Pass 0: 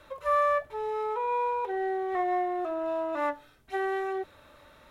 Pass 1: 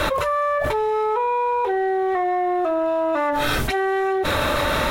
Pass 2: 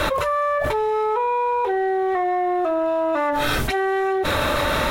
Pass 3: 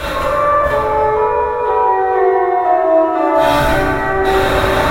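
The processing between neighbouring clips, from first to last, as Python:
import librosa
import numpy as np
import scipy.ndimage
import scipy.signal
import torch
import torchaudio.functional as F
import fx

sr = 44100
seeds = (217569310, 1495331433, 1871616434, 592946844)

y1 = fx.env_flatten(x, sr, amount_pct=100)
y1 = y1 * 10.0 ** (2.0 / 20.0)
y2 = y1
y3 = fx.rev_plate(y2, sr, seeds[0], rt60_s=4.7, hf_ratio=0.25, predelay_ms=0, drr_db=-10.0)
y3 = y3 * 10.0 ** (-3.5 / 20.0)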